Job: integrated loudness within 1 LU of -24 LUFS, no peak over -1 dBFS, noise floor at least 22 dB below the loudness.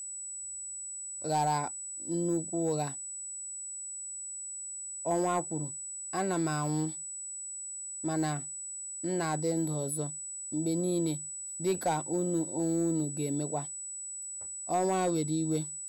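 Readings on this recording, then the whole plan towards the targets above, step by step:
clipped 0.3%; flat tops at -22.0 dBFS; steady tone 7900 Hz; tone level -38 dBFS; loudness -33.0 LUFS; peak -22.0 dBFS; loudness target -24.0 LUFS
-> clip repair -22 dBFS; notch 7900 Hz, Q 30; gain +9 dB

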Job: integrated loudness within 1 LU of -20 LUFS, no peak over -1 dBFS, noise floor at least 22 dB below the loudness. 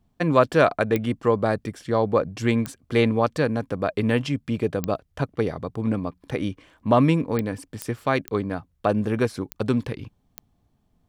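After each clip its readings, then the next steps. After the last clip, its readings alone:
clicks 8; loudness -24.0 LUFS; peak -4.0 dBFS; loudness target -20.0 LUFS
-> de-click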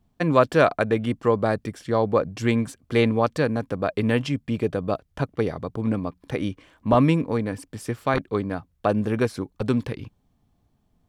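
clicks 0; loudness -24.0 LUFS; peak -4.0 dBFS; loudness target -20.0 LUFS
-> gain +4 dB; limiter -1 dBFS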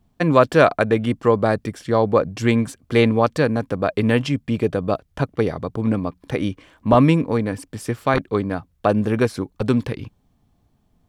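loudness -20.5 LUFS; peak -1.0 dBFS; noise floor -64 dBFS

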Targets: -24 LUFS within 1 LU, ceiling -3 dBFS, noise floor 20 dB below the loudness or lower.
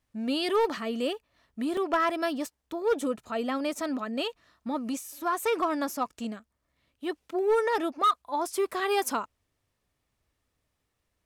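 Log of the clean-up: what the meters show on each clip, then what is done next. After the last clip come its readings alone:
clipped 0.4%; flat tops at -18.5 dBFS; dropouts 1; longest dropout 3.1 ms; loudness -29.5 LUFS; peak -18.5 dBFS; loudness target -24.0 LUFS
-> clip repair -18.5 dBFS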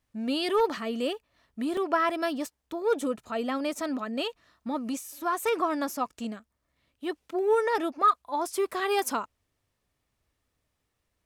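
clipped 0.0%; dropouts 1; longest dropout 3.1 ms
-> interpolate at 1.77, 3.1 ms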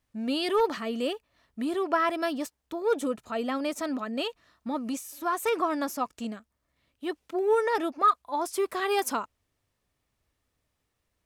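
dropouts 0; loudness -29.0 LUFS; peak -12.5 dBFS; loudness target -24.0 LUFS
-> gain +5 dB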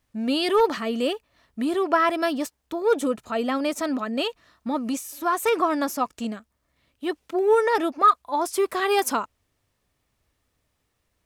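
loudness -24.0 LUFS; peak -7.5 dBFS; noise floor -75 dBFS

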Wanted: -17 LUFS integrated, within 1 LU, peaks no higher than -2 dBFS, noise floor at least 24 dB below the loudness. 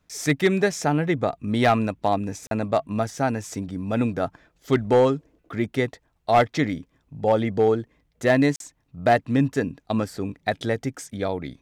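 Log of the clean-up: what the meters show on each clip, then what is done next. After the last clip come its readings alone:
clipped 0.2%; flat tops at -10.5 dBFS; dropouts 2; longest dropout 42 ms; loudness -24.0 LUFS; peak -10.5 dBFS; loudness target -17.0 LUFS
-> clip repair -10.5 dBFS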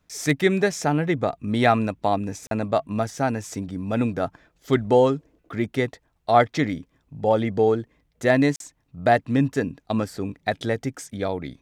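clipped 0.0%; dropouts 2; longest dropout 42 ms
-> interpolate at 2.47/8.56, 42 ms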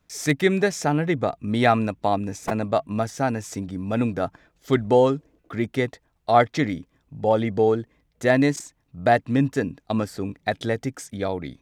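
dropouts 0; loudness -23.5 LUFS; peak -4.0 dBFS; loudness target -17.0 LUFS
-> gain +6.5 dB; limiter -2 dBFS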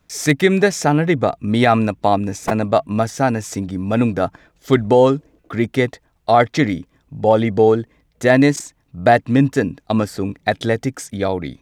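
loudness -17.5 LUFS; peak -2.0 dBFS; noise floor -62 dBFS

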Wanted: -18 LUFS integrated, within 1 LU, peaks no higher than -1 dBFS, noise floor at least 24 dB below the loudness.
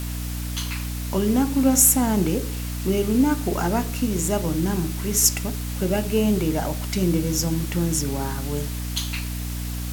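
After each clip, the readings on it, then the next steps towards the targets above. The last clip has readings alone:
hum 60 Hz; harmonics up to 300 Hz; hum level -27 dBFS; noise floor -29 dBFS; noise floor target -47 dBFS; loudness -22.5 LUFS; peak -3.5 dBFS; loudness target -18.0 LUFS
-> de-hum 60 Hz, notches 5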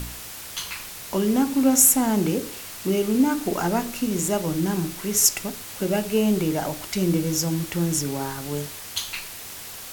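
hum none; noise floor -38 dBFS; noise floor target -47 dBFS
-> noise print and reduce 9 dB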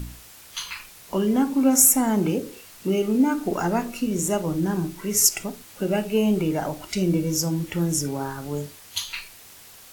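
noise floor -47 dBFS; loudness -23.0 LUFS; peak -4.5 dBFS; loudness target -18.0 LUFS
-> gain +5 dB; limiter -1 dBFS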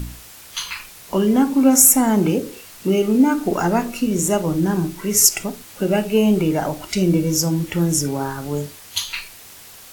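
loudness -18.0 LUFS; peak -1.0 dBFS; noise floor -42 dBFS

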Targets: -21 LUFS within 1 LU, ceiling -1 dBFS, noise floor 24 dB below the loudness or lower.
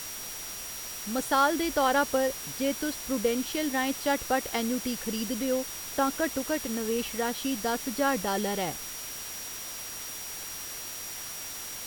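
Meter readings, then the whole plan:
steady tone 5700 Hz; tone level -42 dBFS; noise floor -39 dBFS; noise floor target -54 dBFS; loudness -30.0 LUFS; peak -11.0 dBFS; loudness target -21.0 LUFS
-> notch 5700 Hz, Q 30; noise print and reduce 15 dB; gain +9 dB

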